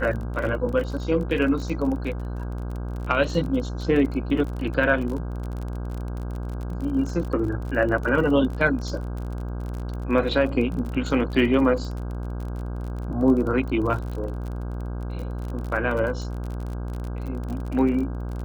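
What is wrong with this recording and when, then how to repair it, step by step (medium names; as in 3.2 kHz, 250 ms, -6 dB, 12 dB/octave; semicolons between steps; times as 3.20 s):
buzz 60 Hz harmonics 27 -30 dBFS
crackle 35 per s -31 dBFS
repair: de-click; de-hum 60 Hz, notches 27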